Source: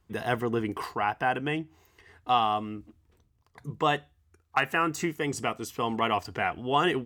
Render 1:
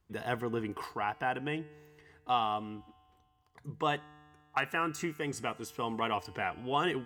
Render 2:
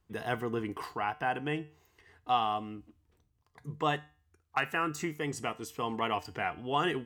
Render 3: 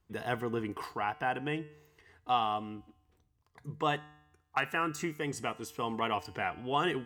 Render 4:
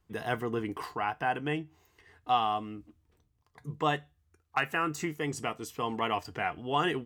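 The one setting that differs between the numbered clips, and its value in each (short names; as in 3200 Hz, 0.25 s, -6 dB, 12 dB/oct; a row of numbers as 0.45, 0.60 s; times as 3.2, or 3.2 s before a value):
resonator, decay: 2.1, 0.41, 0.86, 0.15 s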